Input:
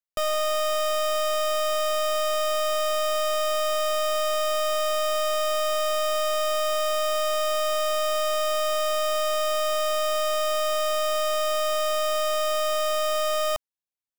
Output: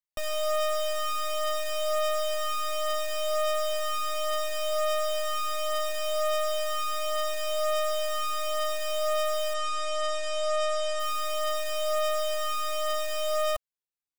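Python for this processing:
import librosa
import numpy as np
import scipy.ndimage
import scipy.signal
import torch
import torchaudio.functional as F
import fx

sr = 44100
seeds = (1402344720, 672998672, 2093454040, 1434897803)

y = fx.steep_lowpass(x, sr, hz=9100.0, slope=48, at=(9.53, 10.99), fade=0.02)
y = fx.comb_cascade(y, sr, direction='falling', hz=0.7)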